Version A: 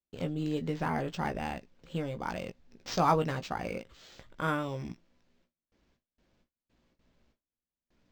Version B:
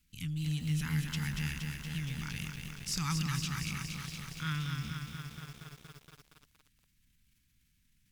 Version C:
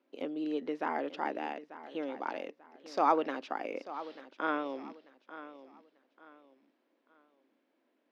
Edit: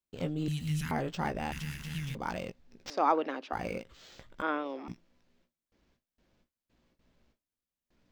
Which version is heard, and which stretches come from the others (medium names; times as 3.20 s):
A
0.48–0.91 s: from B
1.52–2.15 s: from B
2.90–3.53 s: from C
4.42–4.88 s: from C